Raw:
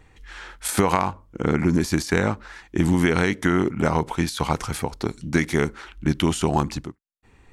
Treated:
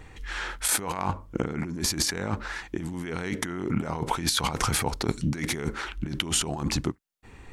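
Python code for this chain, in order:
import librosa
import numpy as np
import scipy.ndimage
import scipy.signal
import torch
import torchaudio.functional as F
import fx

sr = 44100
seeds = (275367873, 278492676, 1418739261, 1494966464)

y = fx.over_compress(x, sr, threshold_db=-29.0, ratio=-1.0)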